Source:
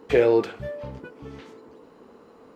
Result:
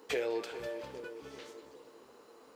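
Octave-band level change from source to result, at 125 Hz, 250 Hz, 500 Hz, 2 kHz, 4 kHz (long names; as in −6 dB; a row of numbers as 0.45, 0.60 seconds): −20.5, −16.5, −14.5, −8.5, −3.0 decibels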